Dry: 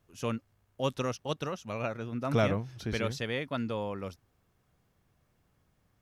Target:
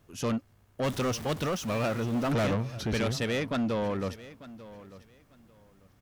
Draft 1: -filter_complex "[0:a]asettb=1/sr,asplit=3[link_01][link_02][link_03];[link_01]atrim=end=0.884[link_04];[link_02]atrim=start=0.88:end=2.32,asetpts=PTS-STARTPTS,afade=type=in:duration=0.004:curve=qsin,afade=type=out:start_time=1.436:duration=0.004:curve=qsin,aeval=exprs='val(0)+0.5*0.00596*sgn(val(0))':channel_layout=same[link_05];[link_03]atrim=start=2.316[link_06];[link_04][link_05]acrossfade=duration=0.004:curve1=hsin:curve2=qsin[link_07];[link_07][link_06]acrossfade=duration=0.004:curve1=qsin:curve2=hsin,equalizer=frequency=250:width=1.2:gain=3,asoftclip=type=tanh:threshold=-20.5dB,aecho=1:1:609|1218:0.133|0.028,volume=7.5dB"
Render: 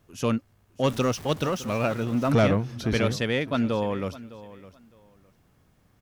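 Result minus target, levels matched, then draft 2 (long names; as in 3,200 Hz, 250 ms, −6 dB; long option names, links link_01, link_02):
soft clipping: distortion −11 dB; echo 285 ms early
-filter_complex "[0:a]asettb=1/sr,asplit=3[link_01][link_02][link_03];[link_01]atrim=end=0.884[link_04];[link_02]atrim=start=0.88:end=2.32,asetpts=PTS-STARTPTS,afade=type=in:duration=0.004:curve=qsin,afade=type=out:start_time=1.436:duration=0.004:curve=qsin,aeval=exprs='val(0)+0.5*0.00596*sgn(val(0))':channel_layout=same[link_05];[link_03]atrim=start=2.316[link_06];[link_04][link_05]acrossfade=duration=0.004:curve1=hsin:curve2=qsin[link_07];[link_07][link_06]acrossfade=duration=0.004:curve1=qsin:curve2=hsin,equalizer=frequency=250:width=1.2:gain=3,asoftclip=type=tanh:threshold=-32dB,aecho=1:1:894|1788:0.133|0.028,volume=7.5dB"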